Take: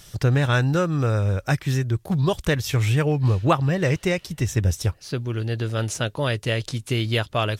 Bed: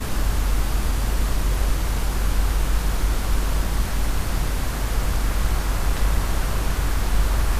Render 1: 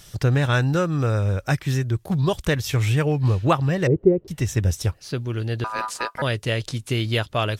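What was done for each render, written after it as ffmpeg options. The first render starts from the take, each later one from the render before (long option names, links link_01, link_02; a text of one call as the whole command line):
ffmpeg -i in.wav -filter_complex "[0:a]asettb=1/sr,asplit=3[link_01][link_02][link_03];[link_01]atrim=end=3.874[link_04];[link_02]atrim=start=3.87:end=4.28,asetpts=PTS-STARTPTS,afade=type=in:duration=0.004:curve=qsin,afade=type=out:start_time=0.406:duration=0.004:curve=qsin,lowpass=frequency=390:width_type=q:width=3.4[link_05];[link_03]atrim=start=4.276[link_06];[link_04][link_05]acrossfade=duration=0.004:curve1=hsin:curve2=qsin[link_07];[link_07][link_06]acrossfade=duration=0.004:curve1=qsin:curve2=hsin,asettb=1/sr,asplit=3[link_08][link_09][link_10];[link_08]atrim=end=5.644[link_11];[link_09]atrim=start=5.64:end=6.22,asetpts=PTS-STARTPTS,afade=type=in:duration=0.004:curve=qsin,afade=type=out:start_time=0.576:duration=0.004:curve=qsin,aeval=exprs='val(0)*sin(2*PI*1100*n/s)':channel_layout=same[link_12];[link_10]atrim=start=6.216[link_13];[link_11][link_12]acrossfade=duration=0.004:curve1=hsin:curve2=qsin[link_14];[link_14][link_13]acrossfade=duration=0.004:curve1=qsin:curve2=hsin" out.wav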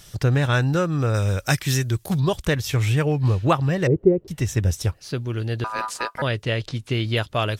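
ffmpeg -i in.wav -filter_complex "[0:a]asettb=1/sr,asplit=3[link_01][link_02][link_03];[link_01]atrim=end=1.144[link_04];[link_02]atrim=start=1.14:end=2.2,asetpts=PTS-STARTPTS,afade=type=in:duration=0.004:curve=qsin,afade=type=out:start_time=1.056:duration=0.004:curve=qsin,highshelf=frequency=2700:gain=12[link_05];[link_03]atrim=start=2.196[link_06];[link_04][link_05]acrossfade=duration=0.004:curve1=hsin:curve2=qsin[link_07];[link_07][link_06]acrossfade=duration=0.004:curve1=qsin:curve2=hsin,asettb=1/sr,asplit=3[link_08][link_09][link_10];[link_08]atrim=end=6.224[link_11];[link_09]atrim=start=6.22:end=7.17,asetpts=PTS-STARTPTS,afade=type=in:duration=0.004:curve=qsin,afade=type=out:start_time=0.946:duration=0.004:curve=qsin,acrossover=split=5200[link_12][link_13];[link_13]acompressor=threshold=-54dB:ratio=4:attack=1:release=60[link_14];[link_12][link_14]amix=inputs=2:normalize=0[link_15];[link_10]atrim=start=7.166[link_16];[link_11][link_15]acrossfade=duration=0.004:curve1=hsin:curve2=qsin[link_17];[link_17][link_16]acrossfade=duration=0.004:curve1=qsin:curve2=hsin" out.wav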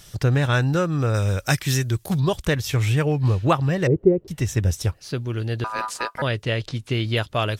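ffmpeg -i in.wav -af anull out.wav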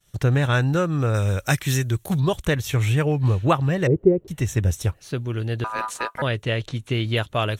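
ffmpeg -i in.wav -af "agate=range=-33dB:threshold=-37dB:ratio=3:detection=peak,equalizer=frequency=4900:width=6.4:gain=-13" out.wav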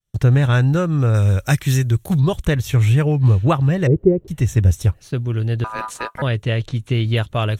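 ffmpeg -i in.wav -af "agate=range=-22dB:threshold=-41dB:ratio=16:detection=peak,lowshelf=frequency=190:gain=9" out.wav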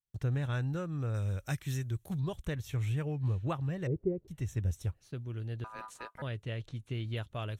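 ffmpeg -i in.wav -af "volume=-18dB" out.wav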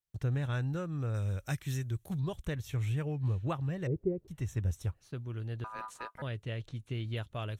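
ffmpeg -i in.wav -filter_complex "[0:a]asettb=1/sr,asplit=3[link_01][link_02][link_03];[link_01]atrim=end=4.234[link_04];[link_02]atrim=start=4.23:end=6.12,asetpts=PTS-STARTPTS,afade=type=in:duration=0.004:curve=qsin,afade=type=out:start_time=1.886:duration=0.004:curve=qsin,equalizer=frequency=1100:width_type=o:width=1:gain=4[link_05];[link_03]atrim=start=6.116[link_06];[link_04][link_05]acrossfade=duration=0.004:curve1=hsin:curve2=qsin[link_07];[link_07][link_06]acrossfade=duration=0.004:curve1=qsin:curve2=hsin" out.wav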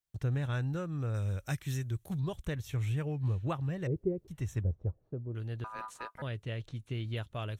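ffmpeg -i in.wav -filter_complex "[0:a]asettb=1/sr,asplit=3[link_01][link_02][link_03];[link_01]atrim=end=4.634[link_04];[link_02]atrim=start=4.63:end=5.35,asetpts=PTS-STARTPTS,afade=type=in:duration=0.004:curve=qsin,afade=type=out:start_time=0.716:duration=0.004:curve=qsin,lowpass=frequency=540:width_type=q:width=1.6[link_05];[link_03]atrim=start=5.346[link_06];[link_04][link_05]acrossfade=duration=0.004:curve1=hsin:curve2=qsin[link_07];[link_07][link_06]acrossfade=duration=0.004:curve1=qsin:curve2=hsin" out.wav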